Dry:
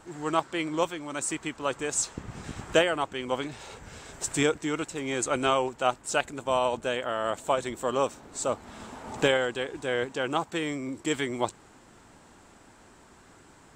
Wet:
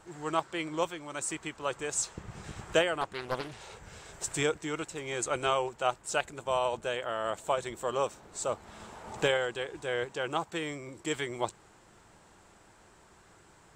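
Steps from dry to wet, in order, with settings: bell 260 Hz -14 dB 0.22 oct; 3.01–3.74 Doppler distortion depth 0.46 ms; gain -3.5 dB

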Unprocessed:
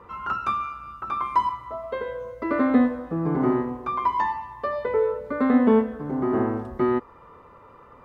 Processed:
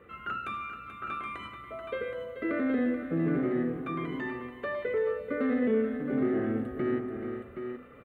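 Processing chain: low shelf 95 Hz -10.5 dB; notches 50/100/150/200/250 Hz; limiter -19 dBFS, peak gain reduction 9.5 dB; reverse; upward compressor, threshold -41 dBFS; reverse; fixed phaser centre 2300 Hz, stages 4; on a send: tapped delay 0.433/0.772 s -9.5/-8 dB

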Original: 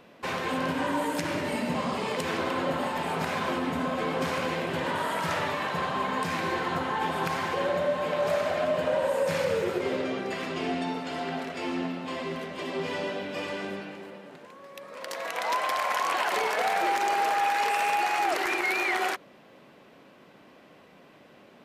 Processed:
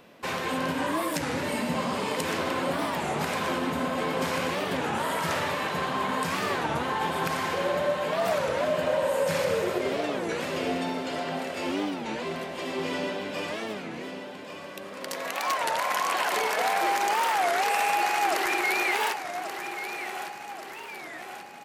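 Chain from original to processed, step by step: high shelf 6100 Hz +7 dB; on a send: feedback echo 1.133 s, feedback 52%, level -9.5 dB; on the sum: record warp 33 1/3 rpm, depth 250 cents

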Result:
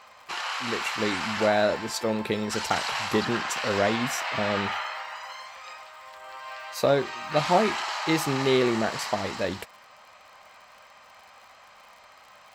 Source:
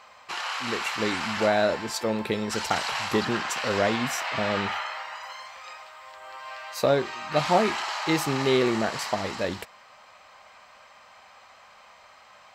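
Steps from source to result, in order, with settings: crackle 68/s -43 dBFS

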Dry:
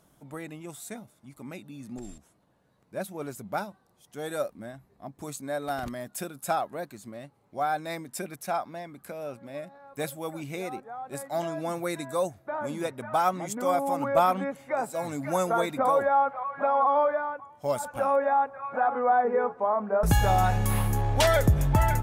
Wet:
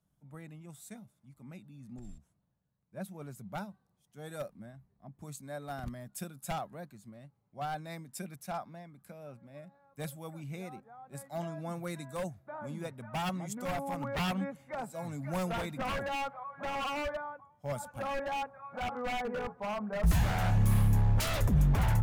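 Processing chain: wavefolder -21.5 dBFS; resonant low shelf 240 Hz +7.5 dB, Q 1.5; three-band expander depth 40%; gain -8 dB

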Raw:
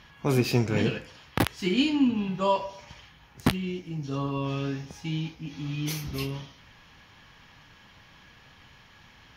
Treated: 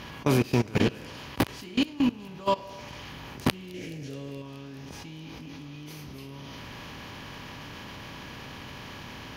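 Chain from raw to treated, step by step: per-bin compression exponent 0.6; level quantiser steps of 21 dB; 3.74–4.42 ten-band EQ 125 Hz +4 dB, 500 Hz +11 dB, 1000 Hz -12 dB, 2000 Hz +10 dB, 8000 Hz +11 dB; on a send: thin delay 0.212 s, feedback 82%, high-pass 4400 Hz, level -20 dB

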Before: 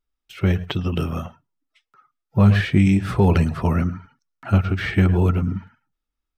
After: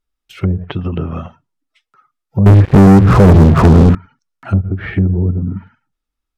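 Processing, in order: treble ducked by the level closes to 350 Hz, closed at -15 dBFS; 2.46–3.95 sample leveller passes 5; gain +3.5 dB

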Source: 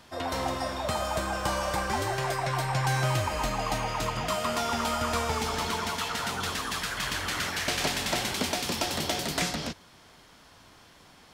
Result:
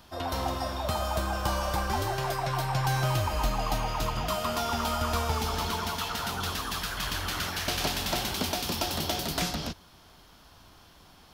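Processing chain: ten-band EQ 125 Hz -6 dB, 250 Hz -6 dB, 500 Hz -8 dB, 1000 Hz -4 dB, 2000 Hz -11 dB, 4000 Hz -3 dB, 8000 Hz -11 dB; gain +7.5 dB

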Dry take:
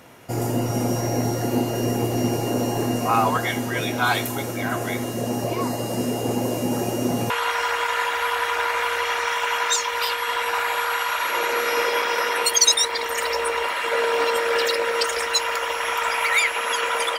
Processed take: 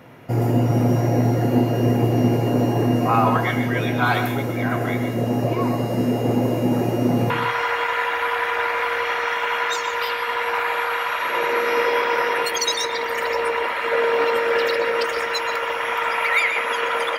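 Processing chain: ten-band EQ 125 Hz +11 dB, 250 Hz +5 dB, 500 Hz +5 dB, 1000 Hz +3 dB, 2000 Hz +5 dB, 8000 Hz -10 dB; on a send: reverb RT60 0.40 s, pre-delay 0.119 s, DRR 7.5 dB; on the sum: gain -4 dB

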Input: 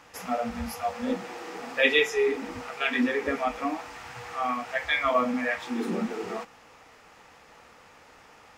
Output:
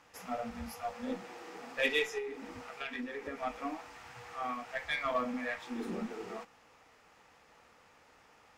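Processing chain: 2.18–3.43 compressor 6:1, threshold -28 dBFS, peak gain reduction 8 dB; added harmonics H 8 -29 dB, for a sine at -8.5 dBFS; gain -9 dB

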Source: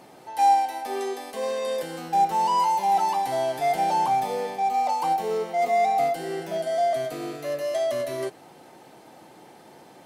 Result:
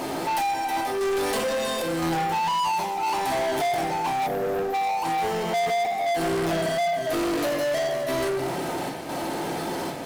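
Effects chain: compressor 16:1, threshold -34 dBFS, peak gain reduction 19.5 dB; chopper 0.99 Hz, depth 60%, duty 80%; reverb RT60 0.95 s, pre-delay 3 ms, DRR 0.5 dB; spectral gain 4.27–4.74, 770–11000 Hz -19 dB; sample leveller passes 5

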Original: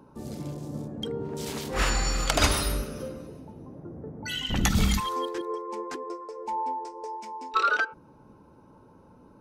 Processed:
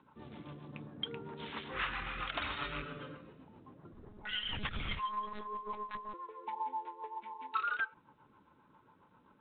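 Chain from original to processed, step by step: rattling part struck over -28 dBFS, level -28 dBFS; HPF 100 Hz 6 dB/oct; resonant low shelf 780 Hz -8.5 dB, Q 1.5; 2.56–3.17 comb 7 ms, depth 93%; compressor 3:1, threshold -30 dBFS, peak gain reduction 9.5 dB; rotary speaker horn 7.5 Hz; flange 0.5 Hz, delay 0.7 ms, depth 6.4 ms, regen -74%; 3.93–6.14 monotone LPC vocoder at 8 kHz 210 Hz; gain +3.5 dB; G.726 32 kbps 8000 Hz

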